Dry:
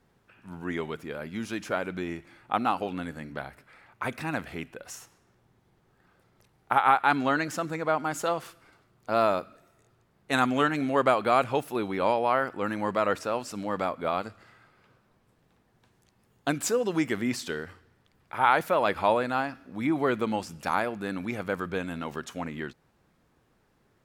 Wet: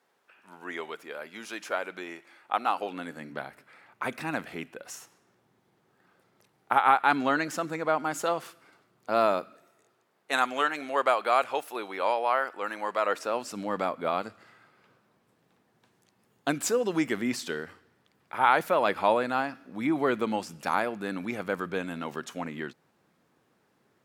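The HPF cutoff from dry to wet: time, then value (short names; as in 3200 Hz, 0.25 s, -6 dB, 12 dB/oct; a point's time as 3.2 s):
2.65 s 490 Hz
3.32 s 180 Hz
9.4 s 180 Hz
10.49 s 540 Hz
12.98 s 540 Hz
13.55 s 160 Hz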